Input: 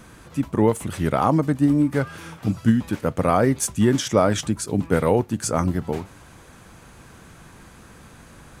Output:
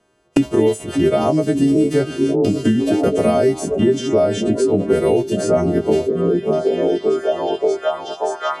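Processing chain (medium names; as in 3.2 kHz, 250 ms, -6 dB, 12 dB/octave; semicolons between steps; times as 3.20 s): partials quantised in pitch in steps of 2 st; distance through air 63 m; gain riding within 5 dB 0.5 s; gate -30 dBFS, range -54 dB; on a send: repeats whose band climbs or falls 583 ms, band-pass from 200 Hz, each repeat 0.7 oct, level -4.5 dB; on the sum: dynamic bell 1 kHz, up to -8 dB, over -36 dBFS, Q 0.87; small resonant body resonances 400/630/2900 Hz, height 18 dB, ringing for 40 ms; three bands compressed up and down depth 100%; trim -2 dB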